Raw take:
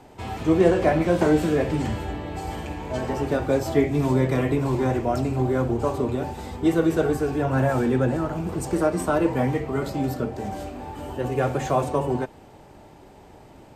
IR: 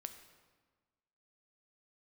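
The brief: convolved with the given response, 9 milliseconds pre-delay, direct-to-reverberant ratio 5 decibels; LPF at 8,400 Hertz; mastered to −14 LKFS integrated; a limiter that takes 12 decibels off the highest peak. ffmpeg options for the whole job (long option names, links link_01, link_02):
-filter_complex "[0:a]lowpass=8400,alimiter=limit=-17dB:level=0:latency=1,asplit=2[link_01][link_02];[1:a]atrim=start_sample=2205,adelay=9[link_03];[link_02][link_03]afir=irnorm=-1:irlink=0,volume=-1dB[link_04];[link_01][link_04]amix=inputs=2:normalize=0,volume=12dB"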